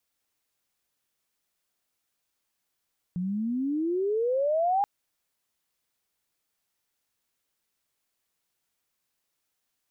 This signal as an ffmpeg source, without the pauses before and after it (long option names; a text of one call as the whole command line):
ffmpeg -f lavfi -i "aevalsrc='pow(10,(-21+6*(t/1.68-1))/20)*sin(2*PI*173*1.68/(27*log(2)/12)*(exp(27*log(2)/12*t/1.68)-1))':duration=1.68:sample_rate=44100" out.wav